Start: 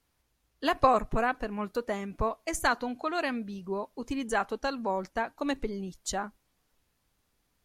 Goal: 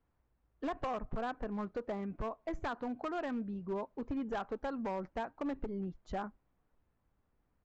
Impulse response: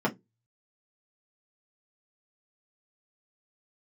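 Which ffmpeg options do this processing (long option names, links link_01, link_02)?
-af "lowpass=1400,lowshelf=frequency=180:gain=3,acompressor=threshold=-29dB:ratio=6,aresample=16000,volume=29.5dB,asoftclip=hard,volume=-29.5dB,aresample=44100,volume=-2.5dB"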